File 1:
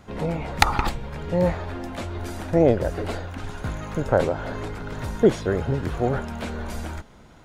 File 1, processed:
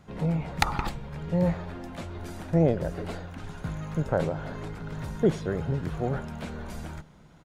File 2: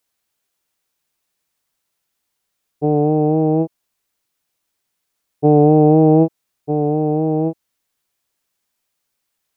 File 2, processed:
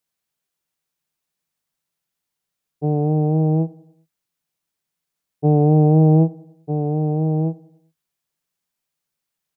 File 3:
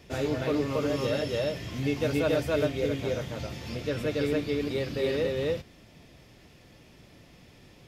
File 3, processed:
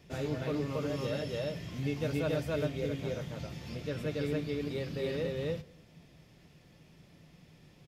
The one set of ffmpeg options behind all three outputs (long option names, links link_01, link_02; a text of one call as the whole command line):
ffmpeg -i in.wav -filter_complex "[0:a]equalizer=frequency=160:width_type=o:width=0.37:gain=10.5,asplit=2[link_01][link_02];[link_02]adelay=97,lowpass=frequency=2000:poles=1,volume=-22dB,asplit=2[link_03][link_04];[link_04]adelay=97,lowpass=frequency=2000:poles=1,volume=0.51,asplit=2[link_05][link_06];[link_06]adelay=97,lowpass=frequency=2000:poles=1,volume=0.51,asplit=2[link_07][link_08];[link_08]adelay=97,lowpass=frequency=2000:poles=1,volume=0.51[link_09];[link_03][link_05][link_07][link_09]amix=inputs=4:normalize=0[link_10];[link_01][link_10]amix=inputs=2:normalize=0,volume=-7dB" out.wav